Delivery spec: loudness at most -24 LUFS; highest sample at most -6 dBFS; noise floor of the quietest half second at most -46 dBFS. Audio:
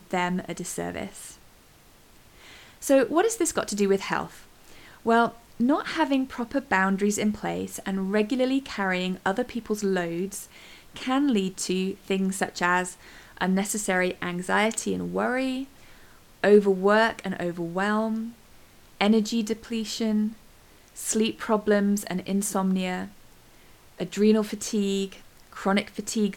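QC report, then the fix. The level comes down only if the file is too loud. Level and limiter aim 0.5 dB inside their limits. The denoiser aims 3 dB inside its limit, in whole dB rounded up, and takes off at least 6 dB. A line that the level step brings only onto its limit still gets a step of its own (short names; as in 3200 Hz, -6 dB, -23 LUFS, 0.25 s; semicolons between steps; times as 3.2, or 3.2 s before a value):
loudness -25.5 LUFS: OK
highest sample -7.5 dBFS: OK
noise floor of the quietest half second -54 dBFS: OK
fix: none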